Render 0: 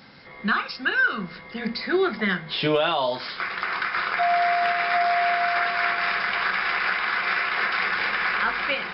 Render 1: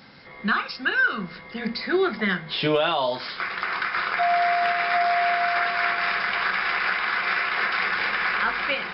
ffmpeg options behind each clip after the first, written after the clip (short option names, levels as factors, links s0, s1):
-af anull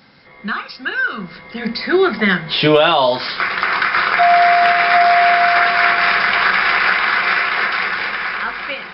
-af "dynaudnorm=f=260:g=13:m=4.22"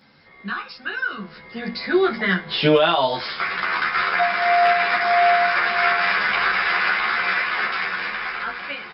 -filter_complex "[0:a]asplit=2[s0][s1];[s1]adelay=11.7,afreqshift=1.6[s2];[s0][s2]amix=inputs=2:normalize=1,volume=0.75"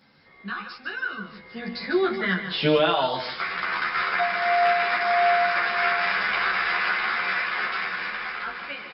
-af "aecho=1:1:149:0.335,volume=0.596"